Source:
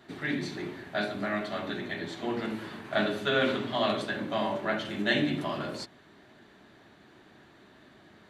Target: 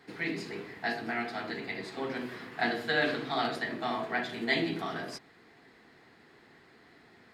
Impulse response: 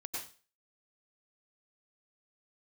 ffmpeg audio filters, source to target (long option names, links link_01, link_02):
-af "equalizer=frequency=1500:width=2.1:gain=4.5,asetrate=49833,aresample=44100,volume=-3.5dB"